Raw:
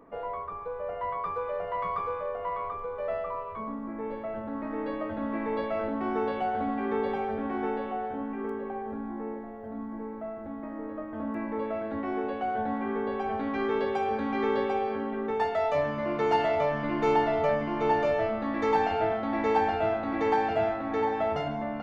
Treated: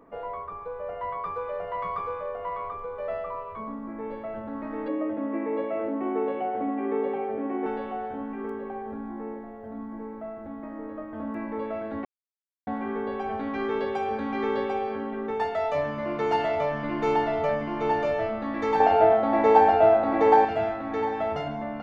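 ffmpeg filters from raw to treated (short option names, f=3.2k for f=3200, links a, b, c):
-filter_complex "[0:a]asettb=1/sr,asplit=3[a][b][c];[a]atrim=end=4.884[d];[b]atrim=start=4.88:end=7.66,asetpts=PTS-STARTPTS,afade=t=in:d=0.004:c=qsin,afade=t=out:st=2.776:d=0.004:c=qsin,highpass=170,equalizer=f=210:t=q:w=4:g=-4,equalizer=f=310:t=q:w=4:g=9,equalizer=f=510:t=q:w=4:g=4,equalizer=f=920:t=q:w=4:g=-3,equalizer=f=1.5k:t=q:w=4:g=-8,lowpass=f=2.6k:w=0.5412,lowpass=f=2.6k:w=1.3066[e];[c]atrim=start=7.656[f];[d][e]acrossfade=d=0.004:c1=hsin:c2=qsin[g];[g][f]acrossfade=d=0.004:c1=qsin:c2=hsin,asettb=1/sr,asplit=3[h][i][j];[h]atrim=end=18.804[k];[i]atrim=start=18.8:end=20.45,asetpts=PTS-STARTPTS,afade=t=in:d=0.004:c=qsin,afade=t=out:st=1.646:d=0.004:c=qsin,equalizer=f=630:t=o:w=1.7:g=10.5[l];[j]atrim=start=20.446[m];[k][l]acrossfade=d=0.004:c1=hsin:c2=qsin[n];[n][m]acrossfade=d=0.004:c1=qsin:c2=hsin,asplit=3[o][p][q];[o]atrim=end=12.05,asetpts=PTS-STARTPTS,afade=t=out:st=12.046:d=0.004:c=hsin[r];[p]atrim=start=12.05:end=12.67,asetpts=PTS-STARTPTS,volume=0[s];[q]atrim=start=12.67,asetpts=PTS-STARTPTS,afade=t=in:d=0.004:c=hsin[t];[r][s][t]concat=n=3:v=0:a=1"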